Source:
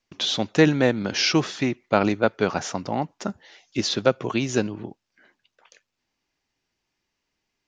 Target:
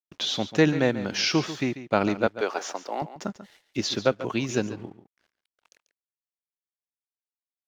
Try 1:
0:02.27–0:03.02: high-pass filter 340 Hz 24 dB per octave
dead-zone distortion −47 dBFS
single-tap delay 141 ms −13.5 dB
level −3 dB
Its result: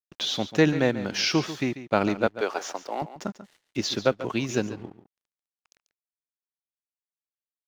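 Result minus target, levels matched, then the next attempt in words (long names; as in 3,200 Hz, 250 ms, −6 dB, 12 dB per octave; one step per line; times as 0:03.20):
dead-zone distortion: distortion +6 dB
0:02.27–0:03.02: high-pass filter 340 Hz 24 dB per octave
dead-zone distortion −53.5 dBFS
single-tap delay 141 ms −13.5 dB
level −3 dB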